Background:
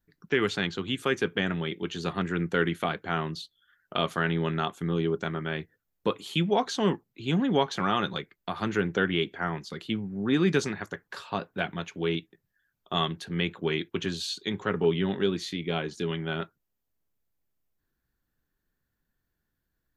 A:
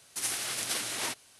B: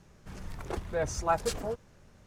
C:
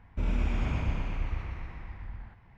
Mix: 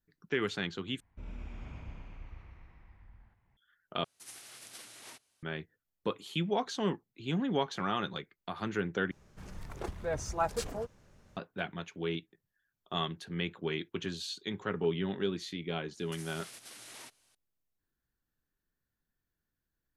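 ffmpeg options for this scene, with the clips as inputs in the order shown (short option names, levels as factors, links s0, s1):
-filter_complex "[1:a]asplit=2[s0][s1];[0:a]volume=0.473[s2];[s1]alimiter=level_in=1.41:limit=0.0631:level=0:latency=1:release=184,volume=0.708[s3];[s2]asplit=4[s4][s5][s6][s7];[s4]atrim=end=1.004[s8];[3:a]atrim=end=2.57,asetpts=PTS-STARTPTS,volume=0.168[s9];[s5]atrim=start=3.566:end=4.044[s10];[s0]atrim=end=1.39,asetpts=PTS-STARTPTS,volume=0.141[s11];[s6]atrim=start=5.426:end=9.114[s12];[2:a]atrim=end=2.26,asetpts=PTS-STARTPTS,volume=0.668[s13];[s7]atrim=start=11.366[s14];[s3]atrim=end=1.39,asetpts=PTS-STARTPTS,volume=0.251,afade=t=in:d=0.004:c=hsin,afade=t=out:st=1.386:d=0.004:c=hsin,adelay=15960[s15];[s8][s9]acrossfade=d=0.004:c1=hsin:c2=hsin[s16];[s16][s10]acrossfade=d=0.004:c1=hsin:c2=hsin[s17];[s17][s11]acrossfade=d=0.004:c1=hsin:c2=hsin[s18];[s18][s12]acrossfade=d=0.004:c1=hsin:c2=hsin[s19];[s19][s13]acrossfade=d=0.004:c1=hsin:c2=hsin[s20];[s20][s14]acrossfade=d=0.004:c1=hsin:c2=hsin[s21];[s21][s15]amix=inputs=2:normalize=0"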